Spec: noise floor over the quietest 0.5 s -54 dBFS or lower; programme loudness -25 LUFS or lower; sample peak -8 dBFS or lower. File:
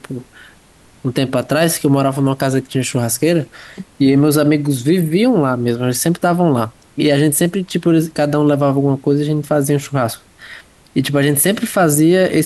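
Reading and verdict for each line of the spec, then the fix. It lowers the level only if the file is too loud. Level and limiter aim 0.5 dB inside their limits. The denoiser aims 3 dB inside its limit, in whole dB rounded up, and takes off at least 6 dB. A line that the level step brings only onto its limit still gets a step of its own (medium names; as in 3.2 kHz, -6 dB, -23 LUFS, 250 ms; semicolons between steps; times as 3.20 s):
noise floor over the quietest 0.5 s -47 dBFS: fail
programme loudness -15.5 LUFS: fail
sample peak -3.5 dBFS: fail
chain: trim -10 dB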